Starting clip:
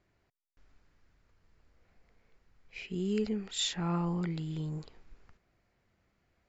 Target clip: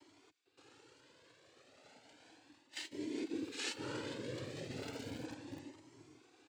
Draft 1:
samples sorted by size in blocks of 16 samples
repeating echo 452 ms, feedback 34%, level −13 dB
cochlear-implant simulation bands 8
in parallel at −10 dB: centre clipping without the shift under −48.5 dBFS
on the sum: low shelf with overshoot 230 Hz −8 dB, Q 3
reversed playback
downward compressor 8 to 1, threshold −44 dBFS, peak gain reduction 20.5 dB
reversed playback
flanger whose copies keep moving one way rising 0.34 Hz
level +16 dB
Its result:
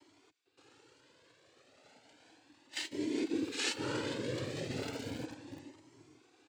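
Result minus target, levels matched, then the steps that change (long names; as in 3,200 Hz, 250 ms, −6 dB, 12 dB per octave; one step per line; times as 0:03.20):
downward compressor: peak gain reduction −6 dB
change: downward compressor 8 to 1, threshold −51 dBFS, peak gain reduction 27 dB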